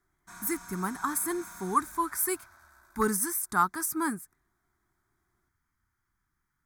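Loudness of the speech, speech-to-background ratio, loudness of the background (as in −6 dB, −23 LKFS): −30.0 LKFS, 18.0 dB, −48.0 LKFS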